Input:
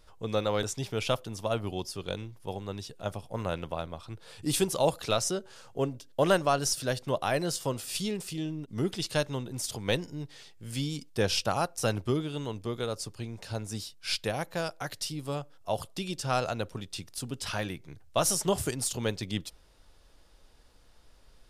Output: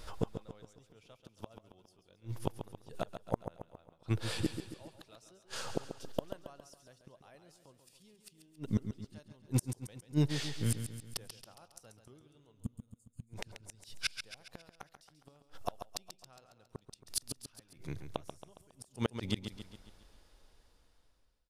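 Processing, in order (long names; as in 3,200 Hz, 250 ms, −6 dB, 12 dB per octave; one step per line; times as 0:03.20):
fade-out on the ending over 6.26 s
gate with flip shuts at −29 dBFS, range −41 dB
gain on a spectral selection 0:12.62–0:13.29, 270–6,400 Hz −20 dB
on a send: repeating echo 137 ms, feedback 50%, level −9 dB
on the sum: level +10.5 dB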